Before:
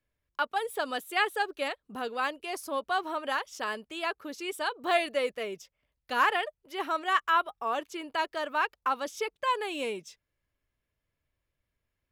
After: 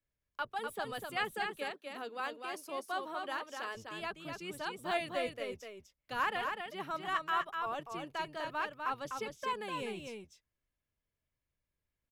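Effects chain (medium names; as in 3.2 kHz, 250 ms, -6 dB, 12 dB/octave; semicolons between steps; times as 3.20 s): octave divider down 1 oct, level -2 dB; 1.46–3.75 s: steep high-pass 230 Hz 36 dB/octave; delay 249 ms -5 dB; trim -8.5 dB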